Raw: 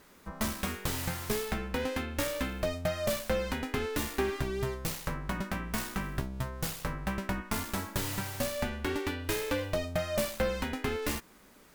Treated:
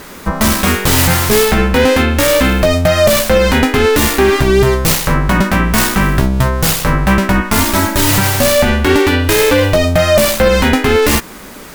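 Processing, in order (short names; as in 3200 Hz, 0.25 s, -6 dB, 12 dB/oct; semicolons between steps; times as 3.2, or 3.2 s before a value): 7.6–8.11 comb 3.2 ms, depth 65%; maximiser +26.5 dB; gain -1 dB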